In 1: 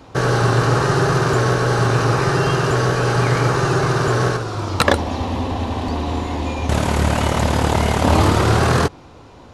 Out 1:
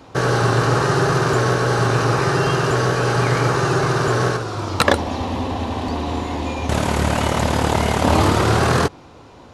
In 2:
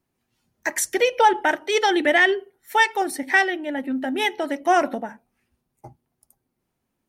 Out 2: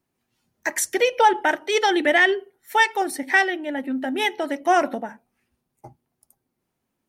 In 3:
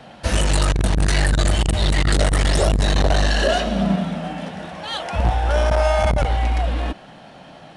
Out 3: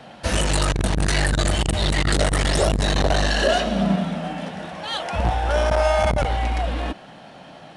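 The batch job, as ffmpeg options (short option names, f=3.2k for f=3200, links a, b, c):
-af "lowshelf=f=77:g=-6.5"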